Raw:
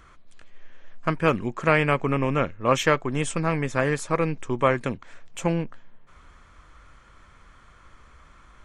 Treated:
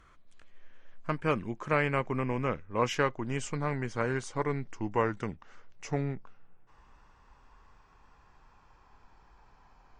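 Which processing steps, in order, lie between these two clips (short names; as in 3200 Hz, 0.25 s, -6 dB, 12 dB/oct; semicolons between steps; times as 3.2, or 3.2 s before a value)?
speed glide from 100% -> 73%; high shelf 9100 Hz -4 dB; gain -7.5 dB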